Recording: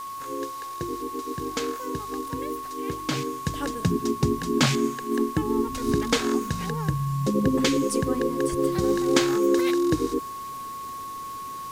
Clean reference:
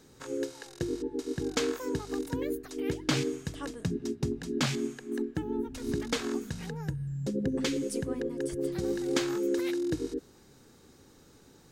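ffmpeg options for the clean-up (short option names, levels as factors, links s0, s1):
-af "adeclick=t=4,bandreject=f=1100:w=30,afwtdn=0.0045,asetnsamples=n=441:p=0,asendcmd='3.46 volume volume -8dB',volume=1"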